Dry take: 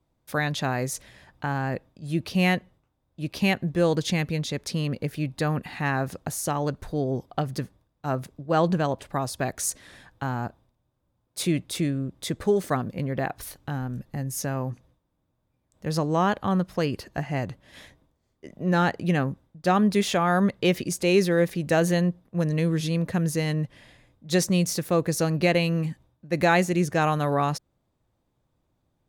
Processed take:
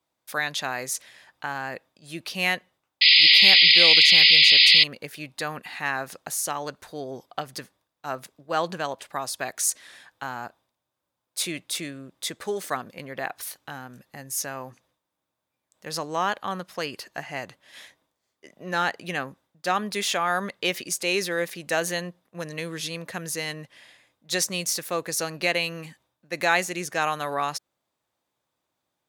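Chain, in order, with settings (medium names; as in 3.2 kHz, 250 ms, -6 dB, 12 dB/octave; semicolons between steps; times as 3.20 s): painted sound noise, 3.01–4.84 s, 1.9–5.1 kHz -18 dBFS; high-pass 1.4 kHz 6 dB/octave; trim +4 dB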